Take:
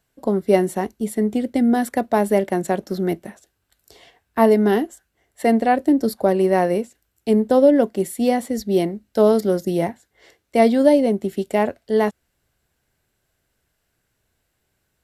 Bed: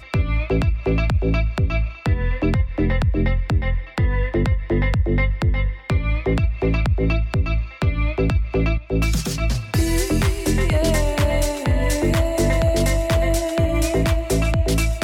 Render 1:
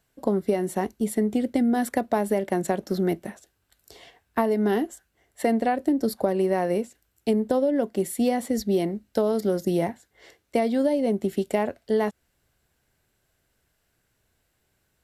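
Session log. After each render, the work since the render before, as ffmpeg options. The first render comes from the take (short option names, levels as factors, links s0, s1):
-af "alimiter=limit=0.447:level=0:latency=1:release=403,acompressor=threshold=0.112:ratio=6"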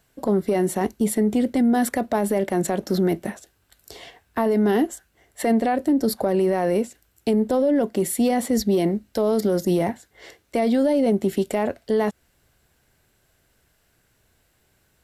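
-af "acontrast=80,alimiter=limit=0.224:level=0:latency=1:release=17"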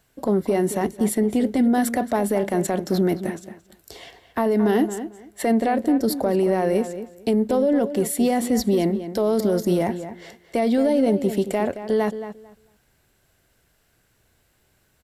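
-filter_complex "[0:a]asplit=2[s0][s1];[s1]adelay=223,lowpass=f=3100:p=1,volume=0.282,asplit=2[s2][s3];[s3]adelay=223,lowpass=f=3100:p=1,volume=0.19,asplit=2[s4][s5];[s5]adelay=223,lowpass=f=3100:p=1,volume=0.19[s6];[s0][s2][s4][s6]amix=inputs=4:normalize=0"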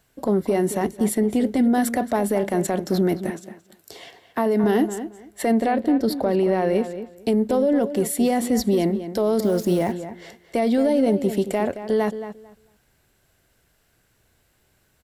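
-filter_complex "[0:a]asettb=1/sr,asplit=3[s0][s1][s2];[s0]atrim=end=3.304[s3];[s1]atrim=start=3.3:end=4.64,asetpts=PTS-STARTPTS,afade=t=in:d=0.004:c=qsin,afade=t=out:st=1.336:d=0.004:c=qsin,highpass=120[s4];[s2]atrim=start=4.636[s5];[s3][s4]acrossfade=d=0.004:c1=hsin:c2=qsin[s6];[s6][s5]acrossfade=d=0.004:c1=qsin:c2=hsin,asettb=1/sr,asplit=3[s7][s8][s9];[s7]atrim=end=5.714[s10];[s8]atrim=start=5.71:end=7.18,asetpts=PTS-STARTPTS,afade=t=in:d=0.004:c=qsin,afade=t=out:st=1.466:d=0.004:c=qsin,highshelf=f=5200:t=q:w=1.5:g=-6.5[s11];[s9]atrim=start=7.176[s12];[s10][s11]acrossfade=d=0.004:c1=hsin:c2=qsin[s13];[s13][s12]acrossfade=d=0.004:c1=qsin:c2=hsin,asplit=3[s14][s15][s16];[s14]afade=t=out:st=9.43:d=0.02[s17];[s15]acrusher=bits=6:mix=0:aa=0.5,afade=t=in:st=9.43:d=0.02,afade=t=out:st=9.91:d=0.02[s18];[s16]afade=t=in:st=9.91:d=0.02[s19];[s17][s18][s19]amix=inputs=3:normalize=0"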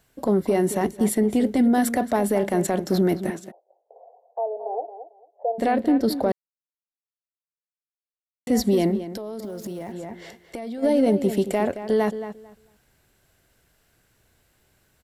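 -filter_complex "[0:a]asplit=3[s0][s1][s2];[s0]afade=t=out:st=3.5:d=0.02[s3];[s1]asuperpass=centerf=630:order=8:qfactor=1.7,afade=t=in:st=3.5:d=0.02,afade=t=out:st=5.58:d=0.02[s4];[s2]afade=t=in:st=5.58:d=0.02[s5];[s3][s4][s5]amix=inputs=3:normalize=0,asplit=3[s6][s7][s8];[s6]afade=t=out:st=9.03:d=0.02[s9];[s7]acompressor=threshold=0.0355:ratio=16:attack=3.2:release=140:knee=1:detection=peak,afade=t=in:st=9.03:d=0.02,afade=t=out:st=10.82:d=0.02[s10];[s8]afade=t=in:st=10.82:d=0.02[s11];[s9][s10][s11]amix=inputs=3:normalize=0,asplit=3[s12][s13][s14];[s12]atrim=end=6.32,asetpts=PTS-STARTPTS,afade=t=out:st=6.316:d=0.004:c=hsin[s15];[s13]atrim=start=6.32:end=8.47,asetpts=PTS-STARTPTS,volume=0[s16];[s14]atrim=start=8.47,asetpts=PTS-STARTPTS,afade=t=in:d=0.004:c=hsin[s17];[s15][s16][s17]concat=n=3:v=0:a=1"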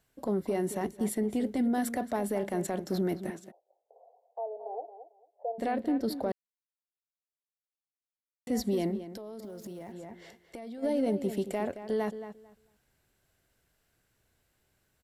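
-af "volume=0.335"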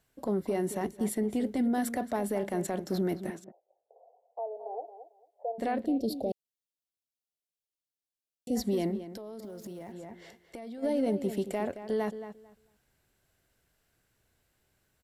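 -filter_complex "[0:a]asettb=1/sr,asplit=3[s0][s1][s2];[s0]atrim=end=3.444[s3];[s1]atrim=start=3.44:end=4.39,asetpts=PTS-STARTPTS,afade=t=in:d=0.004:c=qsin,afade=t=out:st=0.946:d=0.004:c=qsin,lowpass=1000[s4];[s2]atrim=start=4.386[s5];[s3][s4]acrossfade=d=0.004:c1=hsin:c2=qsin[s6];[s6][s5]acrossfade=d=0.004:c1=qsin:c2=hsin,asplit=3[s7][s8][s9];[s7]afade=t=out:st=5.85:d=0.02[s10];[s8]asuperstop=centerf=1400:order=8:qfactor=0.76,afade=t=in:st=5.85:d=0.02,afade=t=out:st=8.55:d=0.02[s11];[s9]afade=t=in:st=8.55:d=0.02[s12];[s10][s11][s12]amix=inputs=3:normalize=0"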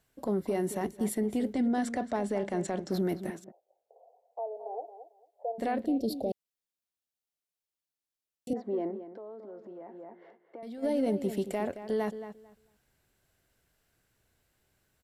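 -filter_complex "[0:a]asettb=1/sr,asplit=3[s0][s1][s2];[s0]atrim=end=1.534[s3];[s1]atrim=start=1.53:end=2.92,asetpts=PTS-STARTPTS,afade=t=in:d=0.004:c=qsin,afade=t=out:st=1.386:d=0.004:c=qsin,lowpass=f=8100:w=0.5412,lowpass=f=8100:w=1.3066[s4];[s2]atrim=start=2.916[s5];[s3][s4]acrossfade=d=0.004:c1=hsin:c2=qsin[s6];[s6][s5]acrossfade=d=0.004:c1=qsin:c2=hsin,asettb=1/sr,asplit=3[s7][s8][s9];[s7]atrim=end=8.534[s10];[s8]atrim=start=8.53:end=10.63,asetpts=PTS-STARTPTS,afade=t=in:d=0.004:c=qsin,afade=t=out:st=2.096:d=0.004:c=qsin,asuperpass=centerf=660:order=4:qfactor=0.62[s11];[s9]atrim=start=10.626[s12];[s10][s11]acrossfade=d=0.004:c1=hsin:c2=qsin[s13];[s13][s12]acrossfade=d=0.004:c1=qsin:c2=hsin"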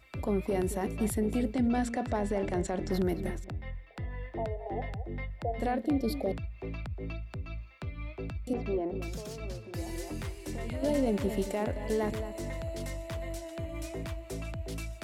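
-filter_complex "[1:a]volume=0.112[s0];[0:a][s0]amix=inputs=2:normalize=0"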